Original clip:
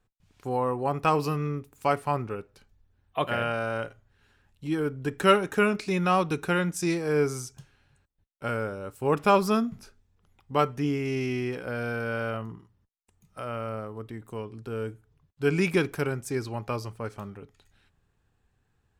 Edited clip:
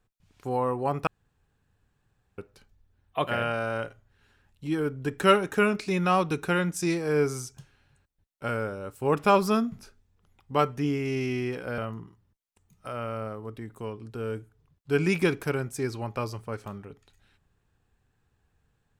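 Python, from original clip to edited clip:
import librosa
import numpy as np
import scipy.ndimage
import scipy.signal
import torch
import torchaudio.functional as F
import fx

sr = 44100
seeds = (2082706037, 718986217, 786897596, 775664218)

y = fx.edit(x, sr, fx.room_tone_fill(start_s=1.07, length_s=1.31),
    fx.cut(start_s=11.78, length_s=0.52), tone=tone)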